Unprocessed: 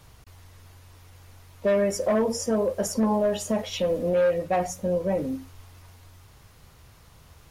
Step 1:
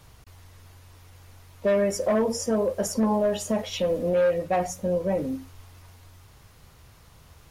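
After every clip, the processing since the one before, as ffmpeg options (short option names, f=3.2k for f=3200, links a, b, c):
-af anull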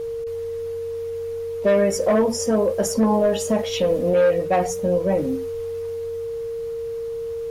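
-af "aeval=exprs='val(0)+0.0316*sin(2*PI*460*n/s)':c=same,volume=4.5dB"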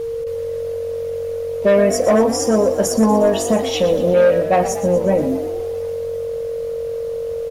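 -filter_complex "[0:a]asplit=7[a][b][c][d][e][f][g];[b]adelay=120,afreqshift=45,volume=-12.5dB[h];[c]adelay=240,afreqshift=90,volume=-17.5dB[i];[d]adelay=360,afreqshift=135,volume=-22.6dB[j];[e]adelay=480,afreqshift=180,volume=-27.6dB[k];[f]adelay=600,afreqshift=225,volume=-32.6dB[l];[g]adelay=720,afreqshift=270,volume=-37.7dB[m];[a][h][i][j][k][l][m]amix=inputs=7:normalize=0,volume=4dB"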